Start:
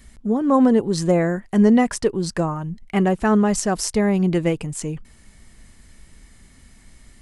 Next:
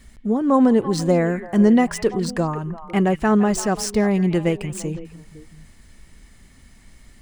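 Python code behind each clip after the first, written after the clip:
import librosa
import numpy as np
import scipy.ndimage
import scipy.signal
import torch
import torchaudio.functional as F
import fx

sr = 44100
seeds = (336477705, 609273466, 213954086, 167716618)

y = scipy.ndimage.median_filter(x, 3, mode='constant')
y = fx.echo_stepped(y, sr, ms=169, hz=2500.0, octaves=-1.4, feedback_pct=70, wet_db=-8)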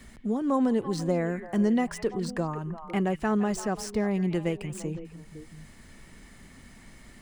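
y = fx.band_squash(x, sr, depth_pct=40)
y = y * librosa.db_to_amplitude(-8.5)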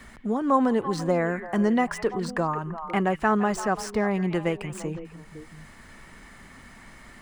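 y = fx.peak_eq(x, sr, hz=1200.0, db=9.5, octaves=2.0)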